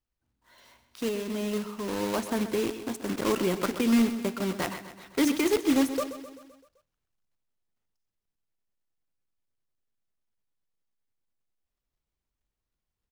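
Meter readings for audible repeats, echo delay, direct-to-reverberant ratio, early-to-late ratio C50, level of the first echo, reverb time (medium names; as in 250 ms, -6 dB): 5, 129 ms, no reverb, no reverb, -12.0 dB, no reverb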